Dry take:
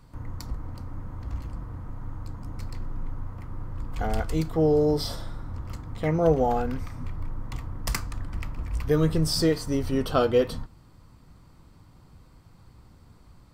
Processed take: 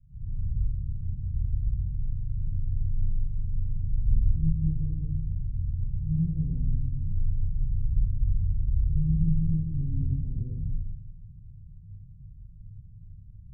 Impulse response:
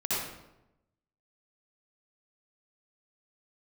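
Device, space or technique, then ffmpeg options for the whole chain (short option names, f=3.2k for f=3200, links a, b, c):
club heard from the street: -filter_complex "[0:a]alimiter=limit=-17dB:level=0:latency=1,lowpass=f=130:w=0.5412,lowpass=f=130:w=1.3066[a];[1:a]atrim=start_sample=2205[b];[a][b]afir=irnorm=-1:irlink=0"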